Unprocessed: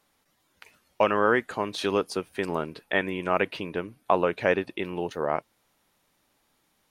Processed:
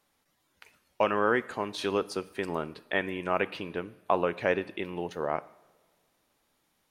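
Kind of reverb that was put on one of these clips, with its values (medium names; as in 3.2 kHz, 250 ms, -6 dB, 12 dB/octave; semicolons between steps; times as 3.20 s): two-slope reverb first 0.77 s, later 2.4 s, from -17 dB, DRR 16 dB; trim -3.5 dB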